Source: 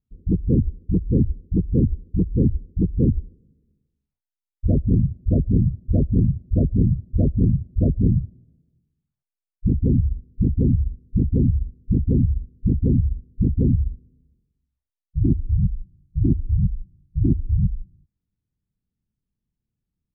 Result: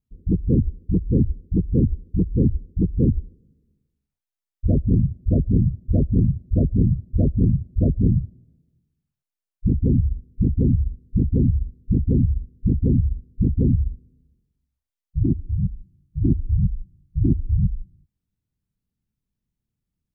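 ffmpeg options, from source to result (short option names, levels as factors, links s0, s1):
-filter_complex "[0:a]asettb=1/sr,asplit=3[s0][s1][s2];[s0]atrim=end=15.234[s3];[s1]atrim=start=15.23:end=16.23,asetpts=PTS-STARTPTS,afade=t=in:d=0.004:c=qsin,afade=t=out:st=0.996:d=0.004:c=qsin,lowshelf=f=62:g=-9.5[s4];[s2]atrim=start=16.226[s5];[s3][s4]acrossfade=d=0.004:c1=hsin:c2=qsin[s6];[s6][s5]acrossfade=d=0.004:c1=qsin:c2=hsin"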